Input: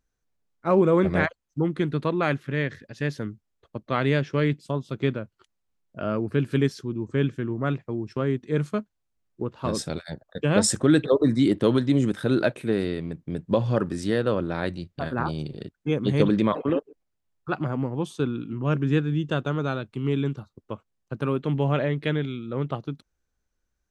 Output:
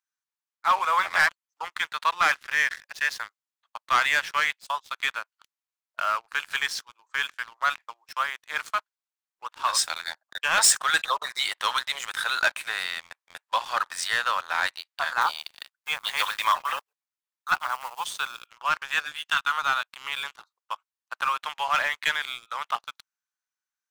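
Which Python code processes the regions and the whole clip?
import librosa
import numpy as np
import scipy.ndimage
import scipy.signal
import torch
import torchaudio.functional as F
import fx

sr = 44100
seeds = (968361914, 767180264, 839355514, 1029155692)

y = fx.chain(x, sr, fx.block_float(bits=7),
    fx.highpass(hz=430.0, slope=12), at=(15.21, 18.47))
y = fx.chain(y, sr, fx.highpass(hz=1000.0, slope=24),
    fx.doubler(ms=14.0, db=-9), at=(19.04, 19.52))
y = scipy.signal.sosfilt(scipy.signal.butter(6, 890.0, 'highpass', fs=sr, output='sos'), y)
y = fx.leveller(y, sr, passes=3)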